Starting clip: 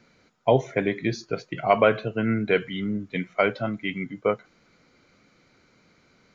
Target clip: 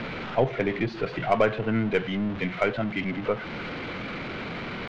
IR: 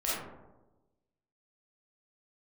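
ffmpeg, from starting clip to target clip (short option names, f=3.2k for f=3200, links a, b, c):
-filter_complex "[0:a]aeval=exprs='val(0)+0.5*0.0447*sgn(val(0))':c=same,lowpass=f=3.3k:w=0.5412,lowpass=f=3.3k:w=1.3066,asplit=2[a][b];[b]acompressor=threshold=-32dB:ratio=6,volume=-2.5dB[c];[a][c]amix=inputs=2:normalize=0,aeval=exprs='0.708*(cos(1*acos(clip(val(0)/0.708,-1,1)))-cos(1*PI/2))+0.0224*(cos(8*acos(clip(val(0)/0.708,-1,1)))-cos(8*PI/2))':c=same,atempo=1.3,volume=-4.5dB"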